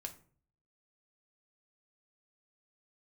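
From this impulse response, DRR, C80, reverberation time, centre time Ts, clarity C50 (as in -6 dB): 4.5 dB, 18.5 dB, 0.45 s, 7 ms, 13.5 dB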